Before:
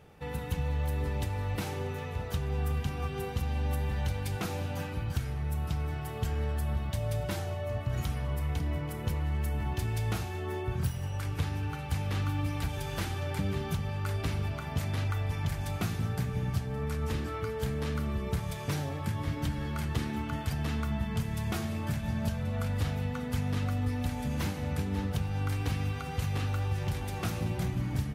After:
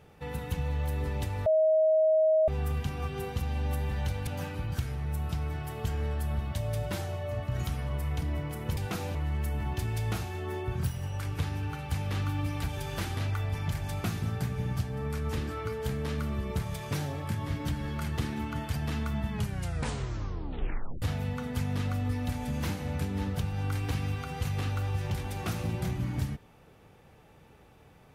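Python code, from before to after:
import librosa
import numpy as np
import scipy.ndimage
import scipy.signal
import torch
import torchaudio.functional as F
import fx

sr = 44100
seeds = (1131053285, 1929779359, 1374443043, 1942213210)

y = fx.edit(x, sr, fx.bleep(start_s=1.46, length_s=1.02, hz=631.0, db=-20.0),
    fx.move(start_s=4.27, length_s=0.38, to_s=9.15),
    fx.cut(start_s=13.17, length_s=1.77),
    fx.tape_stop(start_s=21.09, length_s=1.7), tone=tone)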